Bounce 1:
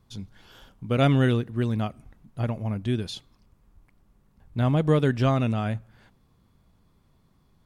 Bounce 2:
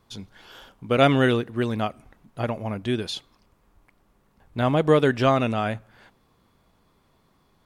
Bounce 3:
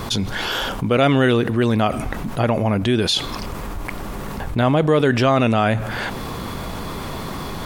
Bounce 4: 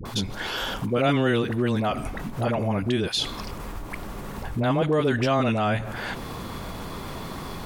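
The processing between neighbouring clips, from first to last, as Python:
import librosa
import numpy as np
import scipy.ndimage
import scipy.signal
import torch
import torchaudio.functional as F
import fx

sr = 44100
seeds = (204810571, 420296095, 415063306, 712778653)

y1 = fx.bass_treble(x, sr, bass_db=-11, treble_db=-3)
y1 = F.gain(torch.from_numpy(y1), 6.5).numpy()
y2 = fx.env_flatten(y1, sr, amount_pct=70)
y3 = fx.dispersion(y2, sr, late='highs', ms=54.0, hz=670.0)
y3 = F.gain(torch.from_numpy(y3), -6.0).numpy()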